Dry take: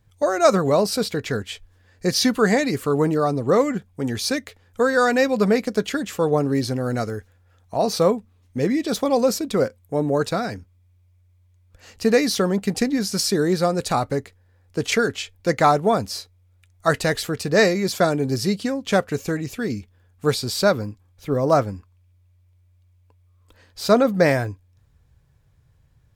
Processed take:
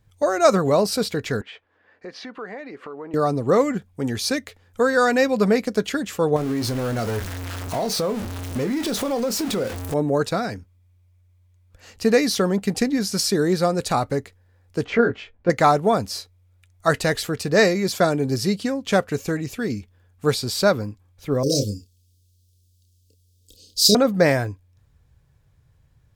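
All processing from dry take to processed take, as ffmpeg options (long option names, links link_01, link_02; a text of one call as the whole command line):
ffmpeg -i in.wav -filter_complex "[0:a]asettb=1/sr,asplit=3[link_01][link_02][link_03];[link_01]atrim=end=1.414[link_04];[link_02]atrim=start=1.41:end=3.14,asetpts=PTS-STARTPTS,afade=type=in:duration=0.004:curve=qsin,afade=type=out:start_time=1.726:duration=0.004:curve=qsin,highpass=290,lowpass=2200,acompressor=threshold=-40dB:ratio=3:attack=3.2:release=140:knee=1:detection=peak,equalizer=frequency=1400:width=0.35:gain=4.5[link_05];[link_03]atrim=start=3.136[link_06];[link_04][link_05]acrossfade=duration=0.004:curve1=hsin:curve2=qsin[link_07];[link_07][link_06]acrossfade=duration=0.004:curve1=qsin:curve2=hsin,asettb=1/sr,asplit=3[link_08][link_09][link_10];[link_08]atrim=end=6.364[link_11];[link_09]atrim=start=6.36:end=9.94,asetpts=PTS-STARTPTS,afade=type=in:duration=0.004:curve=qsin,afade=type=out:start_time=3.576:duration=0.004:curve=qsin,aeval=exprs='val(0)+0.5*0.0596*sgn(val(0))':channel_layout=same,asplit=2[link_12][link_13];[link_13]adelay=26,volume=-11.5dB[link_14];[link_12][link_14]amix=inputs=2:normalize=0,atrim=end_sample=157878,acompressor=threshold=-21dB:ratio=4:attack=3.2:release=140:knee=1:detection=peak[link_15];[link_10]atrim=start=9.936[link_16];[link_11][link_15]acrossfade=duration=0.004:curve1=hsin:curve2=qsin[link_17];[link_17][link_16]acrossfade=duration=0.004:curve1=qsin:curve2=hsin,asettb=1/sr,asplit=3[link_18][link_19][link_20];[link_18]atrim=end=14.844[link_21];[link_19]atrim=start=14.84:end=15.5,asetpts=PTS-STARTPTS,afade=type=in:duration=0.004:curve=qsin,afade=type=out:start_time=0.656:duration=0.004:curve=qsin,lowpass=1700,asplit=2[link_22][link_23];[link_23]adelay=17,volume=-2.5dB[link_24];[link_22][link_24]amix=inputs=2:normalize=0,atrim=end_sample=29106[link_25];[link_20]atrim=start=15.496[link_26];[link_21][link_25]acrossfade=duration=0.004:curve1=hsin:curve2=qsin[link_27];[link_27][link_26]acrossfade=duration=0.004:curve1=qsin:curve2=hsin,asettb=1/sr,asplit=3[link_28][link_29][link_30];[link_28]atrim=end=21.434[link_31];[link_29]atrim=start=21.43:end=23.95,asetpts=PTS-STARTPTS,afade=type=in:duration=0.004:curve=qsin,afade=type=out:start_time=2.516:duration=0.004:curve=qsin,asuperstop=centerf=1200:order=12:qfactor=0.53,highshelf=frequency=3400:width_type=q:width=1.5:gain=12,asplit=2[link_32][link_33];[link_33]adelay=29,volume=-5.5dB[link_34];[link_32][link_34]amix=inputs=2:normalize=0,atrim=end_sample=111132[link_35];[link_30]atrim=start=23.946[link_36];[link_31][link_35]acrossfade=duration=0.004:curve1=hsin:curve2=qsin[link_37];[link_37][link_36]acrossfade=duration=0.004:curve1=qsin:curve2=hsin" out.wav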